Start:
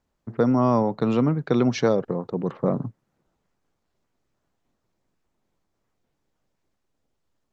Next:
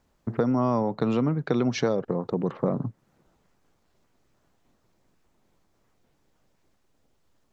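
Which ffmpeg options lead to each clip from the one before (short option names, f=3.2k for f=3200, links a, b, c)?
-af "acompressor=threshold=-34dB:ratio=2.5,volume=7.5dB"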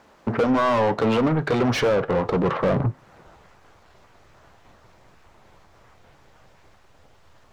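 -filter_complex "[0:a]asubboost=boost=10:cutoff=83,asplit=2[a][b];[b]highpass=f=720:p=1,volume=31dB,asoftclip=type=tanh:threshold=-10dB[c];[a][c]amix=inputs=2:normalize=0,lowpass=f=1.7k:p=1,volume=-6dB,flanger=delay=9:depth=1.5:regen=-72:speed=1.1:shape=triangular,volume=2.5dB"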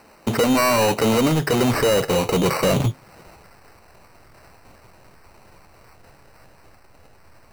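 -filter_complex "[0:a]asplit=2[a][b];[b]asoftclip=type=tanh:threshold=-22.5dB,volume=-5.5dB[c];[a][c]amix=inputs=2:normalize=0,acrusher=samples=13:mix=1:aa=0.000001"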